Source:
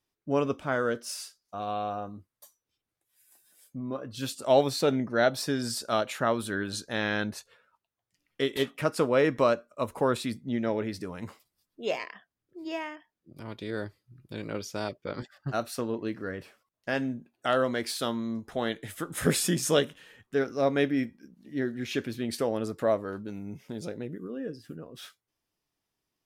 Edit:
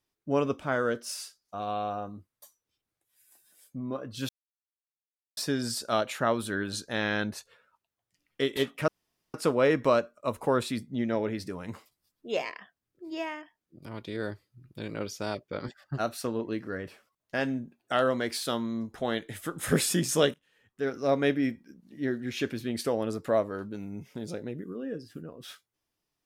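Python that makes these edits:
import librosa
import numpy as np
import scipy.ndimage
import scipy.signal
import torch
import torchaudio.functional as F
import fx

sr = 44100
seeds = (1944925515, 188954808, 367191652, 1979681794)

y = fx.edit(x, sr, fx.silence(start_s=4.29, length_s=1.08),
    fx.insert_room_tone(at_s=8.88, length_s=0.46),
    fx.fade_in_from(start_s=19.88, length_s=0.64, curve='qua', floor_db=-20.5), tone=tone)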